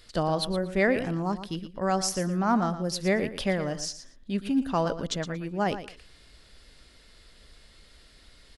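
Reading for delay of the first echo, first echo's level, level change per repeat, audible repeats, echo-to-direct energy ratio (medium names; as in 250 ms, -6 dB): 116 ms, -12.0 dB, -15.0 dB, 2, -12.0 dB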